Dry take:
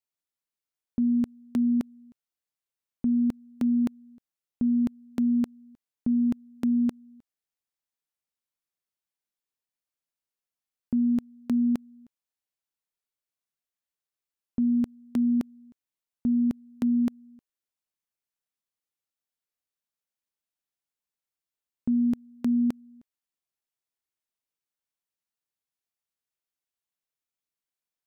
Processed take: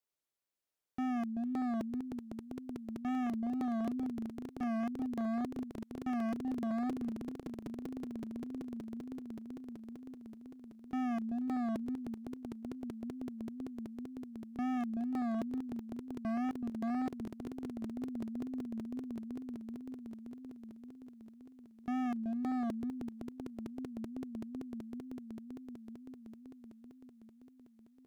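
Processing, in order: on a send: swelling echo 0.191 s, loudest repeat 5, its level -11 dB; on the sum: wow and flutter 120 cents; hard clip -34 dBFS, distortion -4 dB; bell 460 Hz +5 dB 1.5 oct; gain -1.5 dB

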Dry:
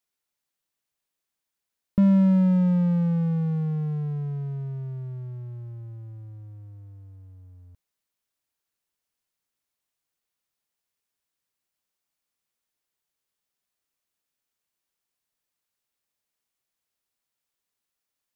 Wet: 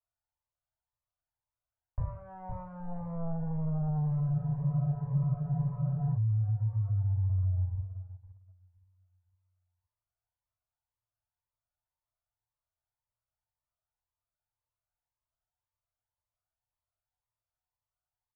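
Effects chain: one diode to ground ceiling -20.5 dBFS; compressor 6:1, threshold -30 dBFS, peak gain reduction 12 dB; on a send: feedback echo 0.513 s, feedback 35%, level -12 dB; on the sum: FDN reverb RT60 0.35 s, low-frequency decay 1.35×, high-frequency decay 0.85×, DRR -3 dB; sample leveller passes 2; Chebyshev band-stop 120–610 Hz, order 3; low shelf 92 Hz +10.5 dB; limiter -24 dBFS, peak gain reduction 10 dB; LPF 1300 Hz 24 dB/oct; spectral freeze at 4.36, 1.81 s; cascading phaser rising 1.9 Hz

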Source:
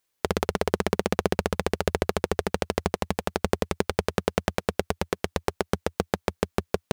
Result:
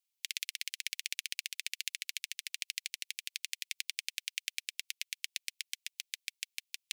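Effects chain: steep high-pass 2200 Hz 48 dB/oct; upward expander 1.5:1, over -53 dBFS; gain +1 dB

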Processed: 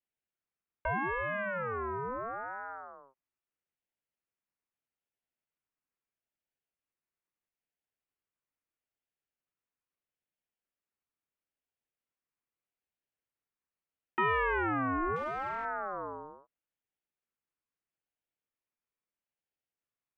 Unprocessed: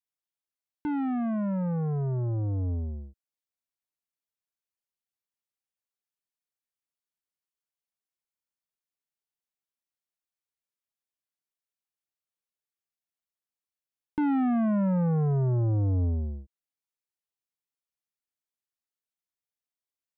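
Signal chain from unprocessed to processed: mistuned SSB -140 Hz 370–2200 Hz; 15.16–15.65 hard clip -38 dBFS, distortion -18 dB; ring modulator with a swept carrier 910 Hz, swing 25%, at 0.77 Hz; gain +7 dB

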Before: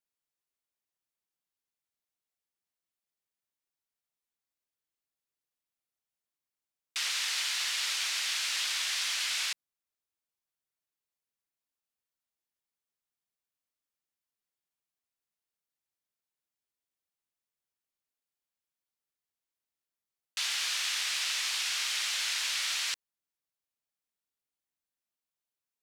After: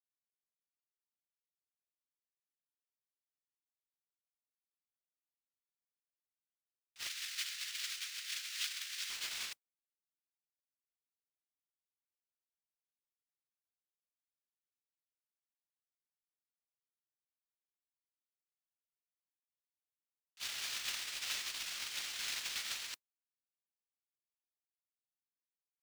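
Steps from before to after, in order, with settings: modulation noise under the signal 10 dB; 7.07–9.1 HPF 1400 Hz 24 dB/oct; gate -27 dBFS, range -47 dB; gain +18 dB

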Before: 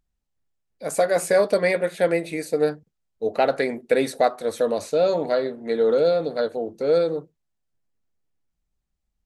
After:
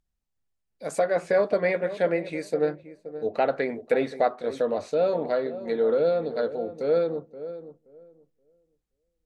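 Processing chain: darkening echo 0.525 s, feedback 21%, low-pass 880 Hz, level -12 dB; treble ducked by the level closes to 2900 Hz, closed at -18.5 dBFS; gain -3.5 dB

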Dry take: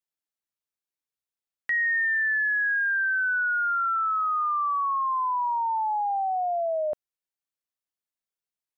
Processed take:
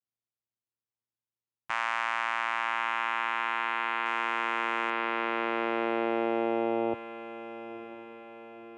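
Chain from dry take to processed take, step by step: 4.05–4.9 sample leveller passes 1; vocoder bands 4, saw 115 Hz; on a send: diffused feedback echo 0.974 s, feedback 54%, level -13 dB; on the sum: gain -4 dB

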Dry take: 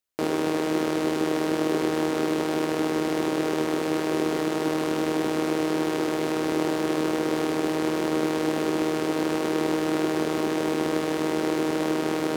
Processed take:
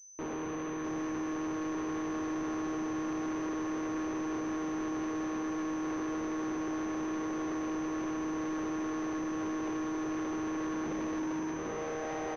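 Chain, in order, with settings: 10.86–11.53 half-waves squared off; loudspeakers at several distances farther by 25 m -10 dB, 95 m -9 dB; high-pass sweep 98 Hz -> 650 Hz, 10.4–12.14; limiter -15 dBFS, peak gain reduction 11.5 dB; overloaded stage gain 33 dB; echo with dull and thin repeats by turns 0.654 s, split 920 Hz, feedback 57%, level -7 dB; pulse-width modulation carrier 6100 Hz; gain -3 dB

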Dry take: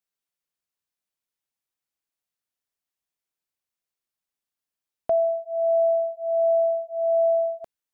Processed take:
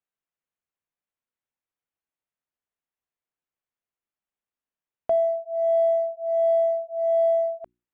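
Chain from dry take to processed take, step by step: Wiener smoothing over 9 samples; notches 60/120/180/240/300/360 Hz

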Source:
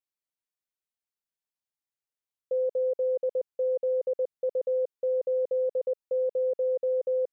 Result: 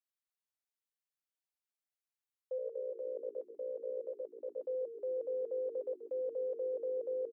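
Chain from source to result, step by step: HPF 630 Hz 12 dB/oct; 2.58–4.63 AM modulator 61 Hz, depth 60%; on a send: frequency-shifting echo 0.133 s, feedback 46%, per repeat -51 Hz, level -11 dB; on the sum: gain -5 dB

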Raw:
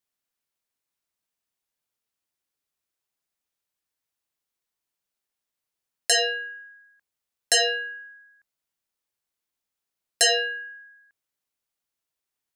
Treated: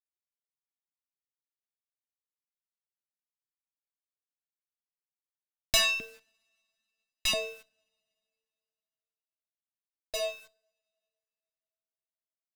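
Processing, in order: Doppler pass-by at 5.23, 25 m/s, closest 13 m; low-pass opened by the level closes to 2500 Hz, open at -35 dBFS; high shelf 5000 Hz -8.5 dB; in parallel at 0 dB: compressor, threshold -41 dBFS, peak gain reduction 16.5 dB; on the sum: fixed phaser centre 410 Hz, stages 6; LFO high-pass saw up 1.5 Hz 230–2800 Hz; requantised 10-bit, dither none; two-slope reverb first 0.54 s, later 3 s, from -28 dB, DRR 20 dB; running maximum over 3 samples; gain +5 dB

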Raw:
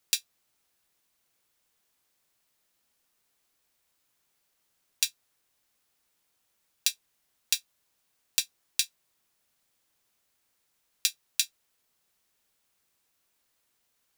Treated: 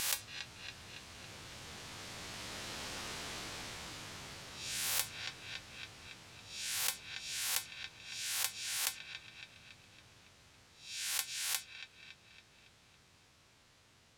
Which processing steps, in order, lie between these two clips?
spectral swells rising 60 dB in 0.45 s; Doppler pass-by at 3.01, 10 m/s, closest 7.3 m; LPF 5400 Hz 12 dB/oct; bell 100 Hz +13.5 dB 1.7 oct; dark delay 0.279 s, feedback 53%, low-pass 1300 Hz, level -18 dB; spectral compressor 10:1; gain +4.5 dB

